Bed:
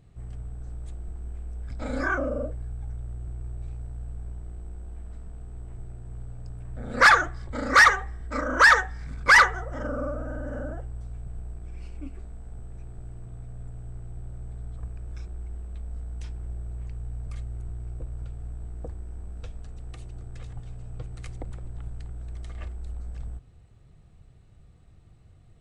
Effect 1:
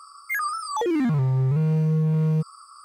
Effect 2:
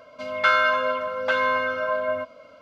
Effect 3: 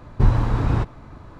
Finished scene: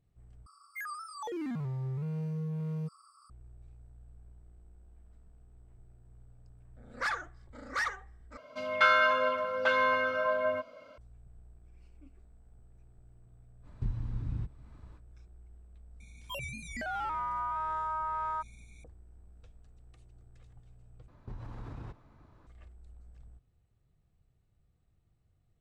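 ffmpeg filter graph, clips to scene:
-filter_complex "[1:a]asplit=2[a][b];[3:a]asplit=2[c][d];[0:a]volume=-17.5dB[e];[c]acrossover=split=240|1700[f][g][h];[f]acompressor=threshold=-16dB:ratio=4[i];[g]acompressor=threshold=-52dB:ratio=4[j];[h]acompressor=threshold=-56dB:ratio=4[k];[i][j][k]amix=inputs=3:normalize=0[l];[b]aeval=exprs='val(0)*sin(2*PI*1100*n/s)':c=same[m];[d]acompressor=threshold=-21dB:ratio=6:attack=3.2:release=140:knee=1:detection=peak[n];[e]asplit=4[o][p][q][r];[o]atrim=end=0.464[s];[a]atrim=end=2.84,asetpts=PTS-STARTPTS,volume=-14dB[t];[p]atrim=start=3.296:end=8.374[u];[2:a]atrim=end=2.61,asetpts=PTS-STARTPTS,volume=-4.5dB[v];[q]atrim=start=10.976:end=21.084[w];[n]atrim=end=1.39,asetpts=PTS-STARTPTS,volume=-17.5dB[x];[r]atrim=start=22.466[y];[l]atrim=end=1.39,asetpts=PTS-STARTPTS,volume=-13dB,afade=t=in:d=0.05,afade=t=out:st=1.34:d=0.05,adelay=13620[z];[m]atrim=end=2.84,asetpts=PTS-STARTPTS,volume=-10.5dB,afade=t=in:d=0.004:c=hsin,afade=t=out:st=2.836:d=0.004:c=hsin,adelay=16000[aa];[s][t]acrossfade=d=0.004:c1=hsin:c2=hsin[ab];[ab][u]acrossfade=d=0.004:c1=hsin:c2=hsin[ac];[ac][v]acrossfade=d=0.004:c1=hsin:c2=hsin[ad];[ad][w]acrossfade=d=0.004:c1=hsin:c2=hsin[ae];[ae][x]acrossfade=d=0.004:c1=hsin:c2=hsin[af];[af][y]acrossfade=d=0.004:c1=hsin:c2=hsin[ag];[ag][z][aa]amix=inputs=3:normalize=0"

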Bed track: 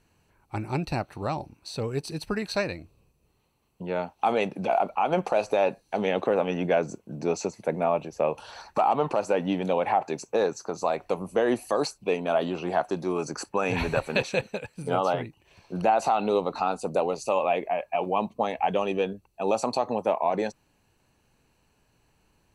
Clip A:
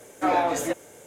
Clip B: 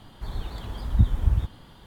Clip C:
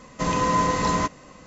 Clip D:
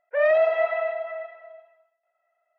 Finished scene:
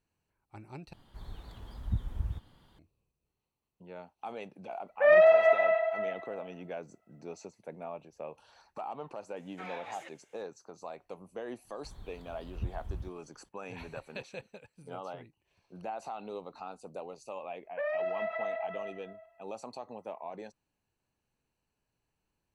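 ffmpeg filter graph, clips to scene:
-filter_complex "[2:a]asplit=2[a][b];[4:a]asplit=2[c][d];[0:a]volume=-17dB[e];[1:a]bandpass=f=2.6k:t=q:w=1.4:csg=0[f];[b]agate=range=-33dB:threshold=-45dB:ratio=3:release=100:detection=peak[g];[d]acompressor=threshold=-24dB:ratio=6:attack=3.2:release=140:knee=1:detection=peak[h];[e]asplit=2[i][j];[i]atrim=end=0.934[k];[a]atrim=end=1.86,asetpts=PTS-STARTPTS,volume=-12.5dB[l];[j]atrim=start=2.786[m];[c]atrim=end=2.58,asetpts=PTS-STARTPTS,afade=t=in:d=0.004:c=hsin,afade=t=out:st=2.576:d=0.004:c=hsin,adelay=4870[n];[f]atrim=end=1.06,asetpts=PTS-STARTPTS,volume=-10.5dB,afade=t=in:d=0.004:c=hsin,afade=t=out:st=1.056:d=0.004:c=hsin,adelay=9360[o];[g]atrim=end=1.86,asetpts=PTS-STARTPTS,volume=-17dB,afade=t=in:d=0.004:c=hsin,afade=t=out:st=1.856:d=0.004:c=hsin,adelay=11630[p];[h]atrim=end=2.58,asetpts=PTS-STARTPTS,volume=-6.5dB,afade=t=in:d=0.004:c=hsin,afade=t=out:st=2.576:d=0.004:c=hsin,adelay=777924S[q];[k][l]acrossfade=d=0.004:c1=hsin:c2=hsin[r];[r][m]acrossfade=d=0.004:c1=hsin:c2=hsin[s];[s][n][o][p][q]amix=inputs=5:normalize=0"

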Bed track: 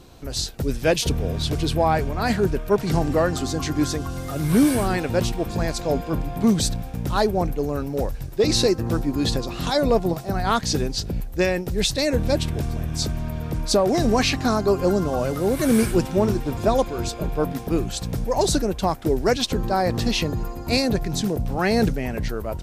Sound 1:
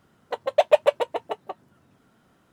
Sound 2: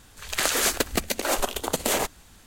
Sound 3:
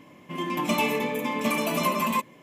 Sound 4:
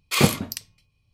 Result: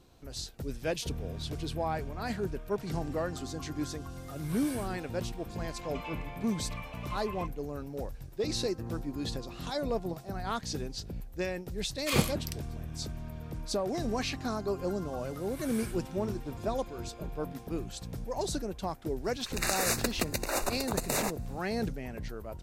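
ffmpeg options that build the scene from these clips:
-filter_complex "[0:a]volume=-13dB[a];[3:a]highpass=750,lowpass=3.2k[b];[2:a]asuperstop=centerf=3200:order=8:qfactor=4.3[c];[b]atrim=end=2.42,asetpts=PTS-STARTPTS,volume=-15dB,afade=t=in:d=0.004:c=hsin,afade=t=out:st=2.416:d=0.004:c=hsin,adelay=5260[d];[4:a]atrim=end=1.13,asetpts=PTS-STARTPTS,volume=-9dB,afade=t=in:d=0.004:c=hsin,afade=t=out:st=1.126:d=0.004:c=hsin,adelay=11950[e];[c]atrim=end=2.46,asetpts=PTS-STARTPTS,volume=-6.5dB,afade=t=in:d=0.004:c=hsin,afade=t=out:st=2.456:d=0.004:c=hsin,adelay=848484S[f];[a][d][e][f]amix=inputs=4:normalize=0"

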